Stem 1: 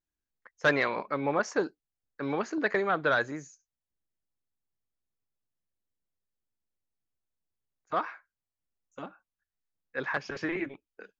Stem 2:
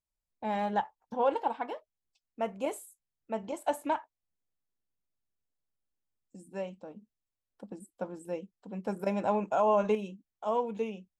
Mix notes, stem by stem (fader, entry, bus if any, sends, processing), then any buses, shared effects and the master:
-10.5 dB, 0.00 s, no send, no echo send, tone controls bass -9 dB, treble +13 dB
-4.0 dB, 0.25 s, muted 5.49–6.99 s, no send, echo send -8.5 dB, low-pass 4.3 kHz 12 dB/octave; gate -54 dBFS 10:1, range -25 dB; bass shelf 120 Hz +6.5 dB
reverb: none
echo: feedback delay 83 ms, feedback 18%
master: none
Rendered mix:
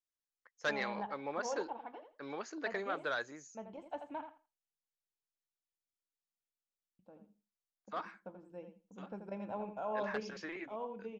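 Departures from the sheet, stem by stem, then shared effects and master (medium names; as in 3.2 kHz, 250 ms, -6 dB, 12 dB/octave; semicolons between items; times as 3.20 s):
stem 2 -4.0 dB -> -13.0 dB; master: extra distance through air 64 m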